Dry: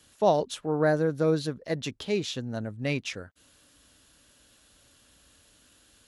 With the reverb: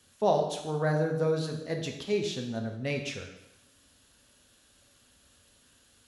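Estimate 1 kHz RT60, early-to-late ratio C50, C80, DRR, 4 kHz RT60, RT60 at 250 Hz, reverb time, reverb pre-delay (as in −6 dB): 0.90 s, 6.5 dB, 9.0 dB, 2.5 dB, 0.85 s, 0.90 s, 0.90 s, 3 ms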